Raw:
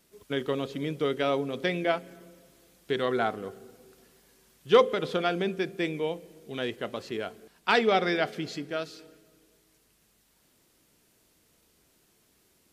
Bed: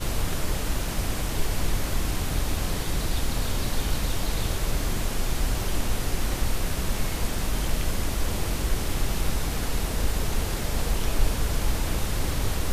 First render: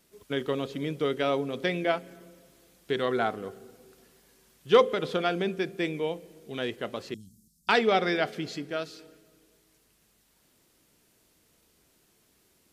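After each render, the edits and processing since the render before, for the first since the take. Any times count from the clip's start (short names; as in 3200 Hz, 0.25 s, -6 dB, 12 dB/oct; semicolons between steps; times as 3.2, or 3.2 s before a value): 7.14–7.69 inverse Chebyshev band-stop 540–2200 Hz, stop band 60 dB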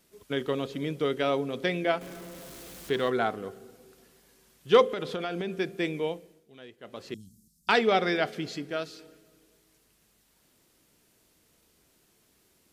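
2.01–3.1 zero-crossing step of -41 dBFS; 4.86–5.56 compressor, threshold -28 dBFS; 6.07–7.19 dip -16 dB, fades 0.39 s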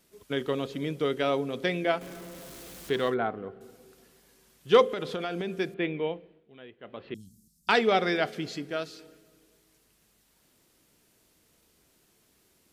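3.14–3.61 air absorption 460 m; 5.74–7.15 steep low-pass 3400 Hz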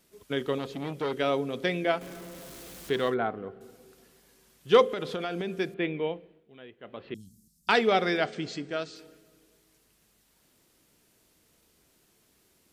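0.58–1.13 core saturation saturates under 1000 Hz; 8.25–8.96 brick-wall FIR low-pass 8800 Hz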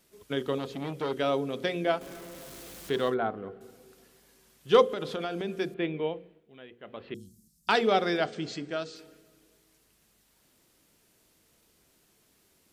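notches 60/120/180/240/300/360/420/480 Hz; dynamic EQ 2100 Hz, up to -5 dB, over -45 dBFS, Q 2.1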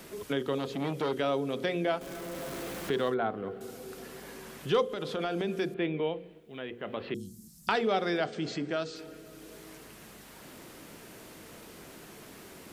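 transient shaper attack -3 dB, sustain +1 dB; three-band squash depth 70%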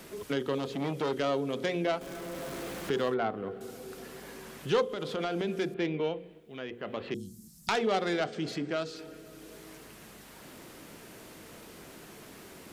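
self-modulated delay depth 0.17 ms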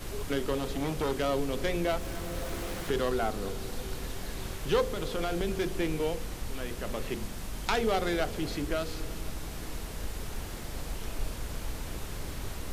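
add bed -11.5 dB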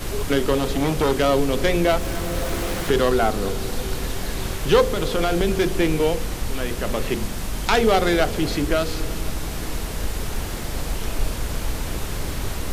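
gain +10.5 dB; limiter -3 dBFS, peak gain reduction 2.5 dB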